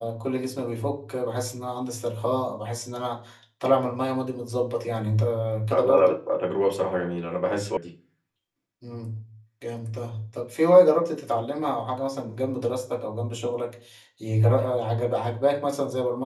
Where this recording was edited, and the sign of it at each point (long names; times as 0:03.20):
0:07.77: cut off before it has died away